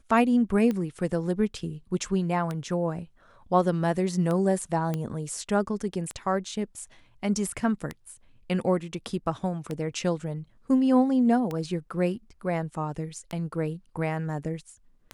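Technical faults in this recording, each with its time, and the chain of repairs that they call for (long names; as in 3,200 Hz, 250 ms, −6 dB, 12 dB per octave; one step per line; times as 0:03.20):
scratch tick 33 1/3 rpm −18 dBFS
0:04.94: click −17 dBFS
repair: click removal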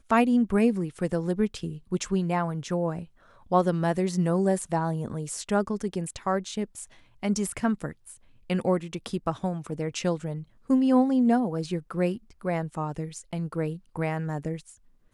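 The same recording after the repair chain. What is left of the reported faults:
none of them is left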